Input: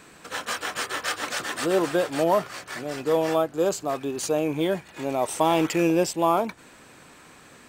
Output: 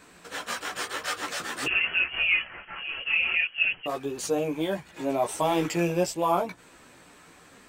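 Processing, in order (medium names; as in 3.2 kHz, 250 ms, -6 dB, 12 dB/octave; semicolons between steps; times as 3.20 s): 1.66–3.86 s: frequency inversion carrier 3.1 kHz; chorus voices 4, 0.71 Hz, delay 14 ms, depth 3.6 ms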